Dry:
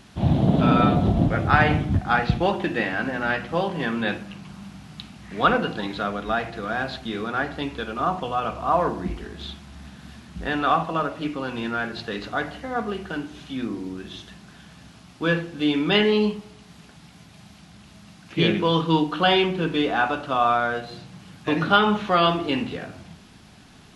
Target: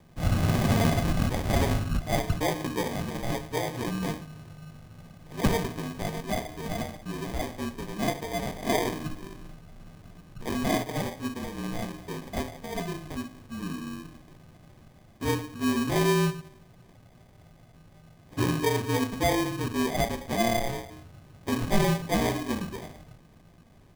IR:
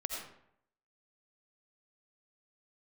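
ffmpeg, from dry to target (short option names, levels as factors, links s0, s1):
-af "aecho=1:1:14|65:0.422|0.141,lowpass=f=2400:t=q:w=0.5098,lowpass=f=2400:t=q:w=0.6013,lowpass=f=2400:t=q:w=0.9,lowpass=f=2400:t=q:w=2.563,afreqshift=-2800,acrusher=samples=32:mix=1:aa=0.000001,volume=0.501"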